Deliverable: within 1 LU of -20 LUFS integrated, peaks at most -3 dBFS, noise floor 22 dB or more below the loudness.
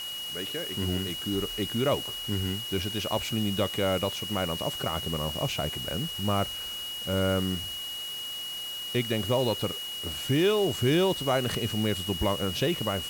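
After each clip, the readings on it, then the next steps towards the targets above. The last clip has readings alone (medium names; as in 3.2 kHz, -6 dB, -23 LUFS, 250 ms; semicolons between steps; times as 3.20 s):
steady tone 2.9 kHz; tone level -34 dBFS; noise floor -36 dBFS; noise floor target -51 dBFS; loudness -28.5 LUFS; peak level -13.5 dBFS; loudness target -20.0 LUFS
-> band-stop 2.9 kHz, Q 30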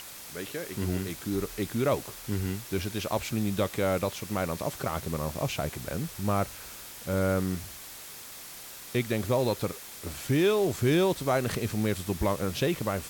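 steady tone not found; noise floor -44 dBFS; noise floor target -52 dBFS
-> noise reduction 8 dB, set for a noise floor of -44 dBFS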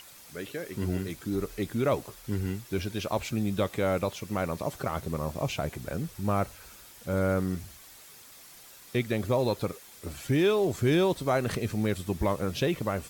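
noise floor -51 dBFS; noise floor target -52 dBFS
-> noise reduction 6 dB, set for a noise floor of -51 dBFS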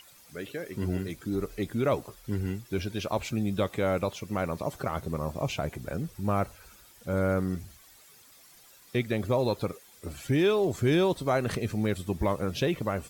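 noise floor -56 dBFS; loudness -30.0 LUFS; peak level -15.0 dBFS; loudness target -20.0 LUFS
-> trim +10 dB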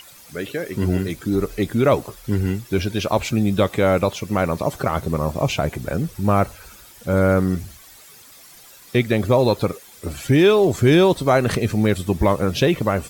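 loudness -20.0 LUFS; peak level -5.0 dBFS; noise floor -46 dBFS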